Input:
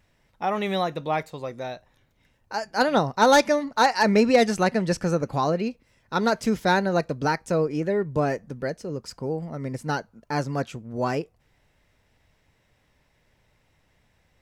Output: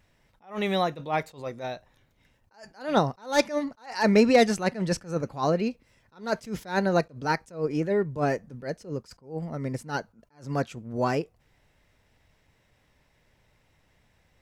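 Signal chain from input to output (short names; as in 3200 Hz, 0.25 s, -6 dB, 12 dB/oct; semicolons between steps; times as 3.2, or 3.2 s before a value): attack slew limiter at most 180 dB/s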